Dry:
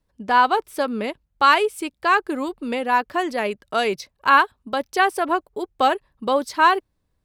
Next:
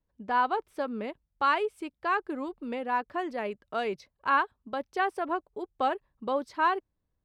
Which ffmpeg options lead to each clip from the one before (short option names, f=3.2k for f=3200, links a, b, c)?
-af "lowpass=f=1.9k:p=1,volume=-8.5dB"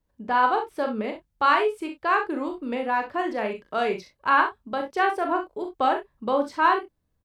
-filter_complex "[0:a]asplit=2[a][b];[b]adelay=28,volume=-11dB[c];[a][c]amix=inputs=2:normalize=0,asplit=2[d][e];[e]aecho=0:1:42|64:0.447|0.299[f];[d][f]amix=inputs=2:normalize=0,volume=4.5dB"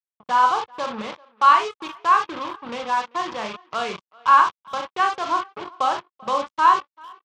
-filter_complex "[0:a]acrusher=bits=4:mix=0:aa=0.5,highpass=110,equalizer=f=270:t=q:w=4:g=-10,equalizer=f=400:t=q:w=4:g=-8,equalizer=f=640:t=q:w=4:g=-5,equalizer=f=1.1k:t=q:w=4:g=9,equalizer=f=1.8k:t=q:w=4:g=-4,equalizer=f=3.3k:t=q:w=4:g=5,lowpass=f=6.8k:w=0.5412,lowpass=f=6.8k:w=1.3066,asplit=2[a][b];[b]adelay=390,highpass=300,lowpass=3.4k,asoftclip=type=hard:threshold=-13dB,volume=-24dB[c];[a][c]amix=inputs=2:normalize=0"